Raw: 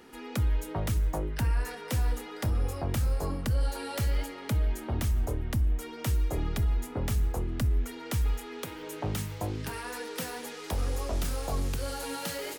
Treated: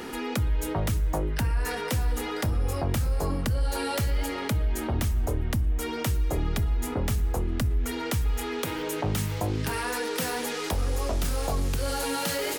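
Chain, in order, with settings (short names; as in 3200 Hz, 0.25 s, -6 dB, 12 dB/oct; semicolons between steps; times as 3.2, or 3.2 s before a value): de-hum 61.38 Hz, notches 2; fast leveller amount 50%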